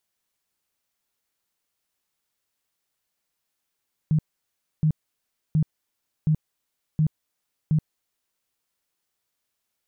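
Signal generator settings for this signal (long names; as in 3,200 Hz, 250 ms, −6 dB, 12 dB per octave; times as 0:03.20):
tone bursts 155 Hz, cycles 12, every 0.72 s, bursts 6, −16.5 dBFS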